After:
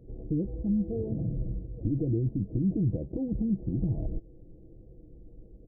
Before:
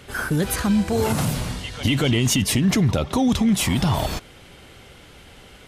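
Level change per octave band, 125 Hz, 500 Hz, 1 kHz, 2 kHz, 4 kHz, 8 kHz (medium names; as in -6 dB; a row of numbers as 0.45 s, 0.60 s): -7.5 dB, -11.0 dB, under -30 dB, under -40 dB, under -40 dB, under -40 dB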